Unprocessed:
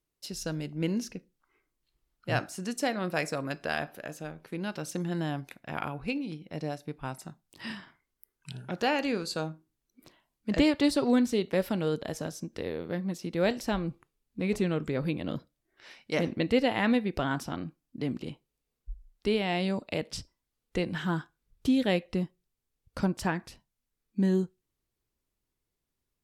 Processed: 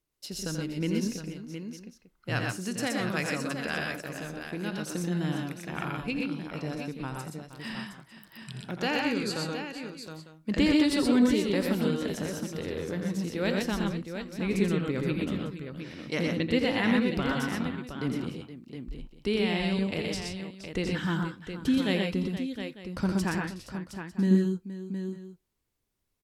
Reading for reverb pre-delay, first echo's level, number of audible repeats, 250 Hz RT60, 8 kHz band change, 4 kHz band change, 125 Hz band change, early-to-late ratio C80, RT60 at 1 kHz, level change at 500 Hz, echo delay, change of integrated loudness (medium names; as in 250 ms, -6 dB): no reverb, -8.0 dB, 5, no reverb, +3.0 dB, +2.5 dB, +2.5 dB, no reverb, no reverb, -0.5 dB, 85 ms, +1.0 dB